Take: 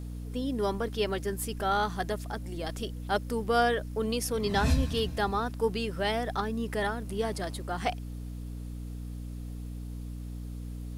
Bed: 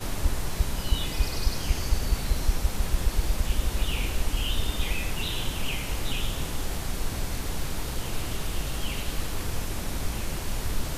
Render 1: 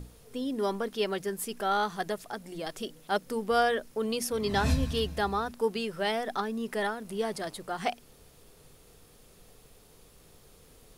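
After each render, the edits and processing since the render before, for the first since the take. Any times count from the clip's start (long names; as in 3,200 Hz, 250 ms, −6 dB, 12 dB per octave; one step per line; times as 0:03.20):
mains-hum notches 60/120/180/240/300 Hz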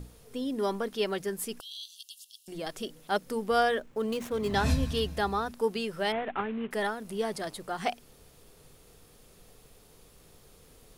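0:01.60–0:02.48: linear-phase brick-wall high-pass 2,700 Hz
0:03.79–0:04.54: running median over 9 samples
0:06.12–0:06.71: variable-slope delta modulation 16 kbit/s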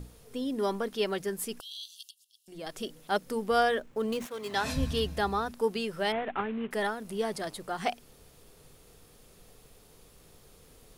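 0:02.11–0:02.80: fade in quadratic, from −15.5 dB
0:04.25–0:04.75: high-pass filter 1,200 Hz → 460 Hz 6 dB per octave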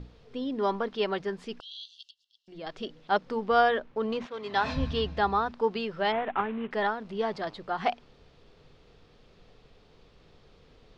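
low-pass filter 4,500 Hz 24 dB per octave
dynamic equaliser 980 Hz, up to +6 dB, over −44 dBFS, Q 1.3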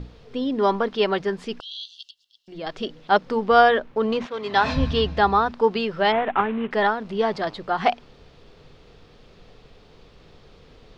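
level +7.5 dB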